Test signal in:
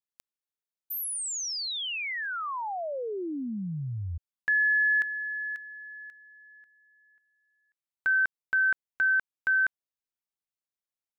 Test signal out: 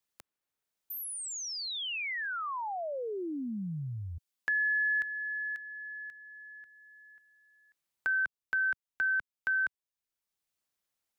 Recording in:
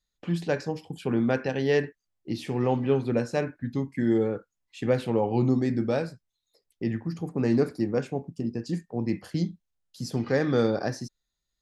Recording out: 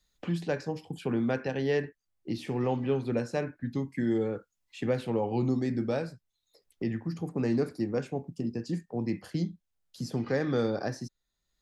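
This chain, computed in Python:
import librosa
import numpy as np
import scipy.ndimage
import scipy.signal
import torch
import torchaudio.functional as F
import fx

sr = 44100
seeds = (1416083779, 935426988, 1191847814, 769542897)

y = fx.band_squash(x, sr, depth_pct=40)
y = F.gain(torch.from_numpy(y), -4.0).numpy()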